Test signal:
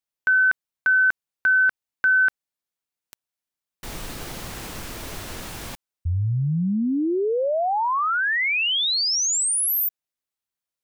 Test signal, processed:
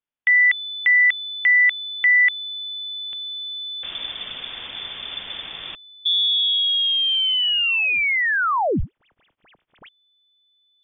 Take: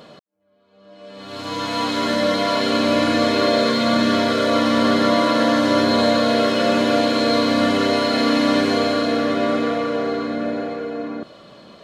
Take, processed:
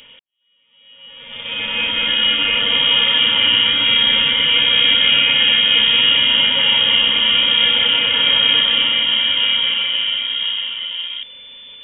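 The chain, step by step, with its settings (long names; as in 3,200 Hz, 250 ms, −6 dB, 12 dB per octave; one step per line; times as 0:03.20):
in parallel at −6.5 dB: slack as between gear wheels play −20.5 dBFS
on the sum: voice inversion scrambler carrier 3,500 Hz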